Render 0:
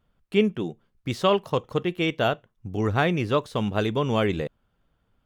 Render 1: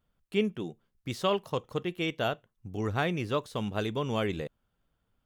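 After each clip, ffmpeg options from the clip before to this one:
ffmpeg -i in.wav -af "highshelf=frequency=5200:gain=6.5,volume=-7dB" out.wav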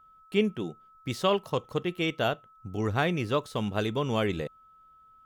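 ffmpeg -i in.wav -af "aeval=exprs='val(0)+0.00141*sin(2*PI*1300*n/s)':channel_layout=same,volume=2.5dB" out.wav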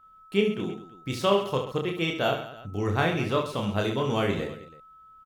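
ffmpeg -i in.wav -af "aecho=1:1:30|72|130.8|213.1|328.4:0.631|0.398|0.251|0.158|0.1" out.wav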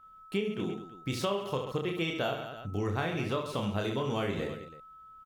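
ffmpeg -i in.wav -af "acompressor=threshold=-28dB:ratio=6" out.wav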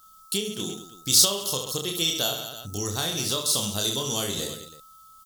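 ffmpeg -i in.wav -af "aexciter=amount=10.8:drive=9.1:freq=3700" out.wav

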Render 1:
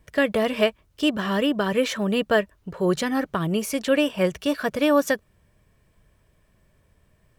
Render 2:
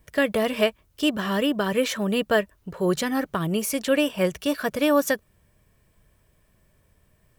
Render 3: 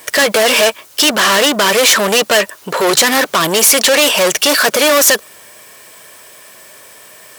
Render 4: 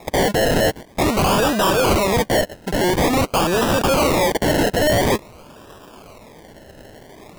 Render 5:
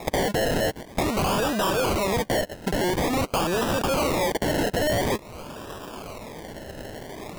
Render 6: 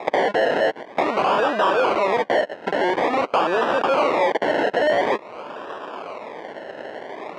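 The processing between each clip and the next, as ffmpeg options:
ffmpeg -i in.wav -af "highshelf=frequency=9200:gain=9.5,volume=-1dB" out.wav
ffmpeg -i in.wav -filter_complex "[0:a]asplit=2[link_01][link_02];[link_02]highpass=frequency=720:poles=1,volume=33dB,asoftclip=type=tanh:threshold=-7dB[link_03];[link_01][link_03]amix=inputs=2:normalize=0,lowpass=frequency=5000:poles=1,volume=-6dB,highpass=70,bass=frequency=250:gain=-12,treble=frequency=4000:gain=9,volume=3dB" out.wav
ffmpeg -i in.wav -af "aresample=16000,asoftclip=type=hard:threshold=-15dB,aresample=44100,acrusher=samples=29:mix=1:aa=0.000001:lfo=1:lforange=17.4:lforate=0.48" out.wav
ffmpeg -i in.wav -af "acompressor=threshold=-27dB:ratio=10,volume=4.5dB" out.wav
ffmpeg -i in.wav -af "highpass=450,lowpass=2200,volume=7.5dB" out.wav

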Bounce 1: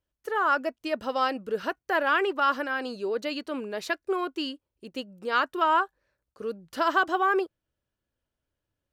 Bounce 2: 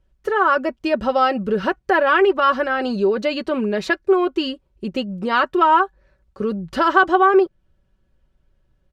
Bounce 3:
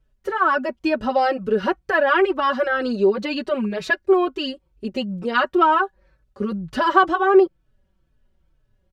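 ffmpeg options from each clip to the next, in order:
ffmpeg -i in.wav -filter_complex "[0:a]aemphasis=mode=reproduction:type=bsi,aecho=1:1:5.3:0.58,asplit=2[link_01][link_02];[link_02]acompressor=threshold=-31dB:ratio=6,volume=2dB[link_03];[link_01][link_03]amix=inputs=2:normalize=0,volume=4dB" out.wav
ffmpeg -i in.wav -filter_complex "[0:a]asplit=2[link_01][link_02];[link_02]adelay=4.1,afreqshift=-2.1[link_03];[link_01][link_03]amix=inputs=2:normalize=1,volume=1.5dB" out.wav

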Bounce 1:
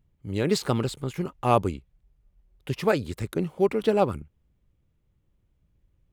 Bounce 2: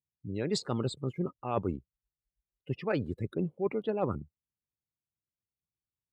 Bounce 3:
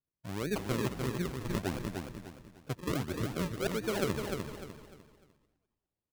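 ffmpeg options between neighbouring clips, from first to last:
ffmpeg -i in.wav -af "afftdn=noise_reduction=28:noise_floor=-36,highpass=95,areverse,acompressor=threshold=-27dB:ratio=8,areverse" out.wav
ffmpeg -i in.wav -filter_complex "[0:a]asplit=2[link_01][link_02];[link_02]asplit=4[link_03][link_04][link_05][link_06];[link_03]adelay=208,afreqshift=-66,volume=-11dB[link_07];[link_04]adelay=416,afreqshift=-132,volume=-19.9dB[link_08];[link_05]adelay=624,afreqshift=-198,volume=-28.7dB[link_09];[link_06]adelay=832,afreqshift=-264,volume=-37.6dB[link_10];[link_07][link_08][link_09][link_10]amix=inputs=4:normalize=0[link_11];[link_01][link_11]amix=inputs=2:normalize=0,acrusher=samples=41:mix=1:aa=0.000001:lfo=1:lforange=41:lforate=1.5,asplit=2[link_12][link_13];[link_13]aecho=0:1:300|600|900|1200:0.562|0.186|0.0612|0.0202[link_14];[link_12][link_14]amix=inputs=2:normalize=0,volume=-2.5dB" out.wav

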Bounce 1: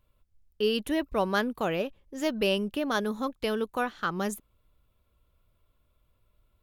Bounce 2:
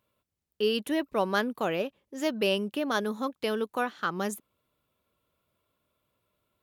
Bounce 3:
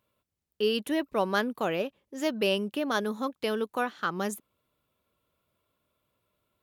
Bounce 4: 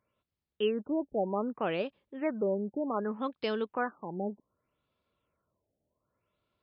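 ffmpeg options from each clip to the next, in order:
ffmpeg -i in.wav -af "highpass=170" out.wav
ffmpeg -i in.wav -af anull out.wav
ffmpeg -i in.wav -af "afftfilt=real='re*lt(b*sr/1024,850*pow(5400/850,0.5+0.5*sin(2*PI*0.65*pts/sr)))':imag='im*lt(b*sr/1024,850*pow(5400/850,0.5+0.5*sin(2*PI*0.65*pts/sr)))':win_size=1024:overlap=0.75,volume=-2.5dB" out.wav

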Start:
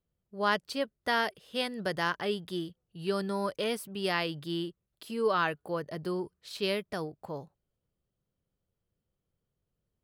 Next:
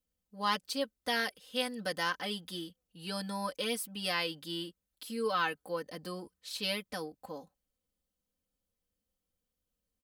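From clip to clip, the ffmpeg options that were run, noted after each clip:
ffmpeg -i in.wav -af "highshelf=frequency=3000:gain=10,aecho=1:1:3.9:0.95,volume=-7.5dB" out.wav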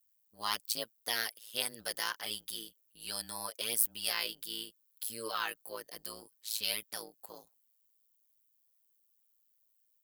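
ffmpeg -i in.wav -af "aemphasis=mode=production:type=riaa,tremolo=f=110:d=0.947,volume=-2dB" out.wav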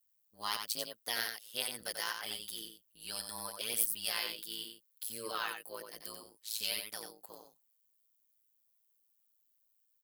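ffmpeg -i in.wav -af "aecho=1:1:90:0.501,volume=-2.5dB" out.wav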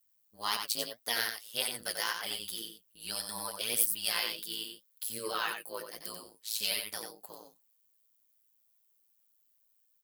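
ffmpeg -i in.wav -af "flanger=delay=4.1:depth=7.7:regen=55:speed=1.8:shape=triangular,volume=8dB" out.wav

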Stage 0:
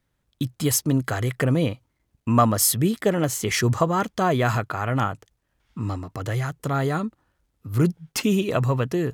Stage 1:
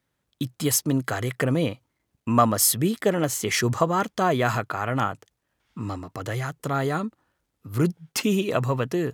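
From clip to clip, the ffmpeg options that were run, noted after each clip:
ffmpeg -i in.wav -af "highpass=frequency=160:poles=1" out.wav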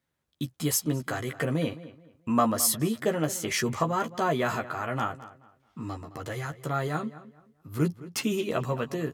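ffmpeg -i in.wav -filter_complex "[0:a]asplit=2[link_01][link_02];[link_02]adelay=13,volume=-5dB[link_03];[link_01][link_03]amix=inputs=2:normalize=0,asplit=2[link_04][link_05];[link_05]adelay=215,lowpass=frequency=3000:poles=1,volume=-16dB,asplit=2[link_06][link_07];[link_07]adelay=215,lowpass=frequency=3000:poles=1,volume=0.28,asplit=2[link_08][link_09];[link_09]adelay=215,lowpass=frequency=3000:poles=1,volume=0.28[link_10];[link_04][link_06][link_08][link_10]amix=inputs=4:normalize=0,volume=-5.5dB" out.wav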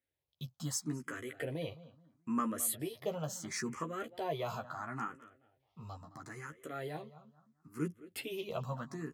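ffmpeg -i in.wav -filter_complex "[0:a]asplit=2[link_01][link_02];[link_02]afreqshift=0.74[link_03];[link_01][link_03]amix=inputs=2:normalize=1,volume=-8dB" out.wav

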